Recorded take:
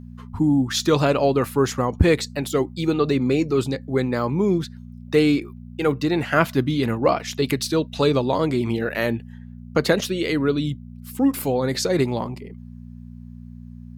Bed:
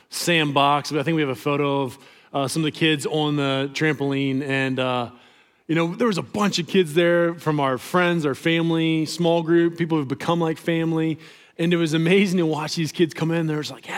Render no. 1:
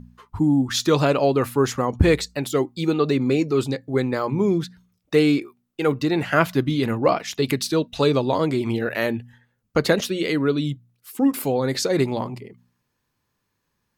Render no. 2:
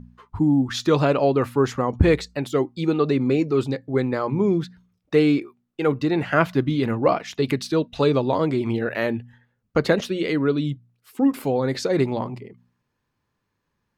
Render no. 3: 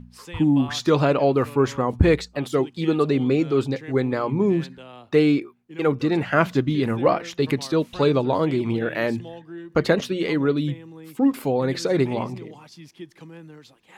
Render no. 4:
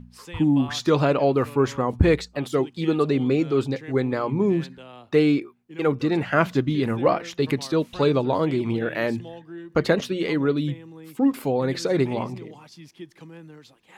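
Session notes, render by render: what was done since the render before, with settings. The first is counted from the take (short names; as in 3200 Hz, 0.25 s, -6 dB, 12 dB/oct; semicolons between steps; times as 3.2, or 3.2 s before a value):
de-hum 60 Hz, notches 4
LPF 2800 Hz 6 dB/oct
add bed -20 dB
gain -1 dB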